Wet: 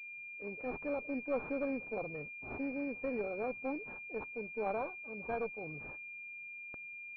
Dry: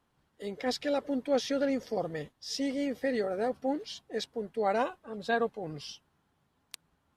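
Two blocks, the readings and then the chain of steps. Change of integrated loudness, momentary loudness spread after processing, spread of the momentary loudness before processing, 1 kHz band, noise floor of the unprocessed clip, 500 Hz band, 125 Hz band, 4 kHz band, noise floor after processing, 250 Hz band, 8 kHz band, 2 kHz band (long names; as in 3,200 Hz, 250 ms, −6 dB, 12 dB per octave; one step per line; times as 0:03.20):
−7.5 dB, 8 LU, 13 LU, −8.0 dB, −75 dBFS, −7.0 dB, −6.0 dB, below −30 dB, −48 dBFS, −7.5 dB, below −35 dB, −1.0 dB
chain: tube saturation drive 20 dB, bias 0.6
switching amplifier with a slow clock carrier 2,400 Hz
level −3.5 dB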